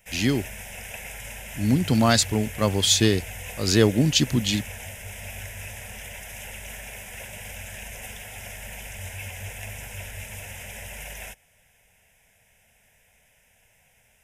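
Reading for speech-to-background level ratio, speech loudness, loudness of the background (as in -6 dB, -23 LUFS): 14.5 dB, -22.0 LUFS, -36.5 LUFS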